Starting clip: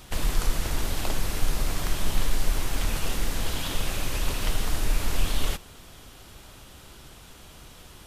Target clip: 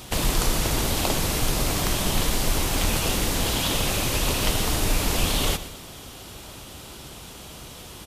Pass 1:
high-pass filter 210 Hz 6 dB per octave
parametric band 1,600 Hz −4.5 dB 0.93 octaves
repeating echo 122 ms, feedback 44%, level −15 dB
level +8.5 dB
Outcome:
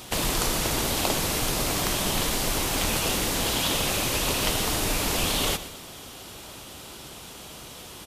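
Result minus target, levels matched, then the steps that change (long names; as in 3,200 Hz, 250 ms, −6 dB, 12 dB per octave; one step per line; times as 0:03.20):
125 Hz band −4.0 dB
change: high-pass filter 81 Hz 6 dB per octave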